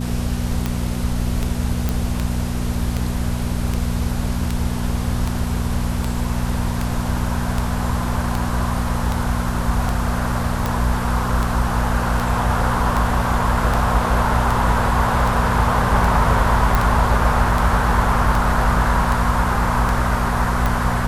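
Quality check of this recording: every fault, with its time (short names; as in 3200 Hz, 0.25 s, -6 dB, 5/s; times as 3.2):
hum 60 Hz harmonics 4 -23 dBFS
tick 78 rpm -8 dBFS
1.89 pop
16.75 pop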